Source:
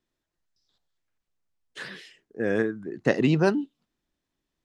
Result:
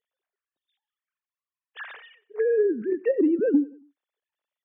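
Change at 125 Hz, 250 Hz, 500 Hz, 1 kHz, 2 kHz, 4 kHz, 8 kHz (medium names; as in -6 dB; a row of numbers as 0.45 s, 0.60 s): under -20 dB, +2.0 dB, +3.5 dB, under -10 dB, -7.5 dB, under -10 dB, no reading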